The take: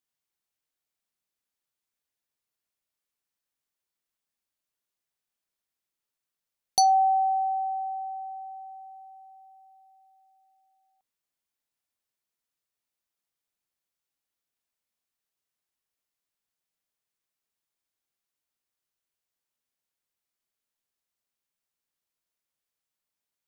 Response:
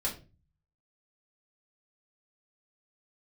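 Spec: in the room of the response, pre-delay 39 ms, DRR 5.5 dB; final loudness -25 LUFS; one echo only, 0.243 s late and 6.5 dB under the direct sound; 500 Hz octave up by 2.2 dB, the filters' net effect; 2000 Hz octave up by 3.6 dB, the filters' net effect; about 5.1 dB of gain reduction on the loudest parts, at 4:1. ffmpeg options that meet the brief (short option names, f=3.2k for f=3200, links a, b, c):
-filter_complex "[0:a]equalizer=f=500:t=o:g=4,equalizer=f=2k:t=o:g=4.5,acompressor=threshold=-22dB:ratio=4,aecho=1:1:243:0.473,asplit=2[a][b];[1:a]atrim=start_sample=2205,adelay=39[c];[b][c]afir=irnorm=-1:irlink=0,volume=-10dB[d];[a][d]amix=inputs=2:normalize=0,volume=6dB"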